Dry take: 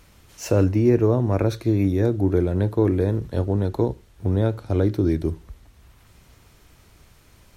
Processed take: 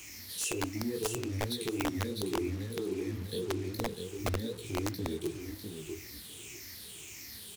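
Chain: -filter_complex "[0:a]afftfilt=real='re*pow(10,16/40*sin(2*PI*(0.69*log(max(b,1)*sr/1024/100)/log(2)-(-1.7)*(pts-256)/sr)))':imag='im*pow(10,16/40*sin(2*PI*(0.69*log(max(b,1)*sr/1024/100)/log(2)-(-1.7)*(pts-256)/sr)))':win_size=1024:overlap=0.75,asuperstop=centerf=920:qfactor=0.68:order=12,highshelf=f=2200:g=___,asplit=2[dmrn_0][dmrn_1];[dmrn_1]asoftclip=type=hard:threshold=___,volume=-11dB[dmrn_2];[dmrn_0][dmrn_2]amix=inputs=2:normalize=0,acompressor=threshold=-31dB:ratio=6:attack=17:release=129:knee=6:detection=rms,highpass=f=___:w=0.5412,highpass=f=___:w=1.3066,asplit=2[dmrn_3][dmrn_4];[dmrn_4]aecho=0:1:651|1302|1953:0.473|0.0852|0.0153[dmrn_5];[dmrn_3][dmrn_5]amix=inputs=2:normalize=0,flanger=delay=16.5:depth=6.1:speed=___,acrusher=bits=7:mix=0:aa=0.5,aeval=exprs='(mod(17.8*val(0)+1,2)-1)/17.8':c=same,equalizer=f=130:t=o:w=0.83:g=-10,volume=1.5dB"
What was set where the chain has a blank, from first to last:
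10.5, -17dB, 81, 81, 2.6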